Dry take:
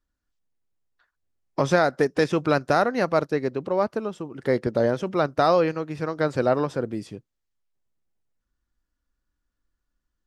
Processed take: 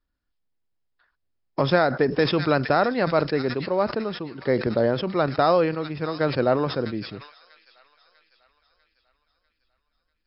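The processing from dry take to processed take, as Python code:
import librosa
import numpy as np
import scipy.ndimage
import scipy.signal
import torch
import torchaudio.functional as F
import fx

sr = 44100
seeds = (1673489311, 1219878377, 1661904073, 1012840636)

p1 = fx.brickwall_lowpass(x, sr, high_hz=5400.0)
p2 = p1 + fx.echo_wet_highpass(p1, sr, ms=646, feedback_pct=48, hz=2700.0, wet_db=-9.0, dry=0)
y = fx.sustainer(p2, sr, db_per_s=100.0)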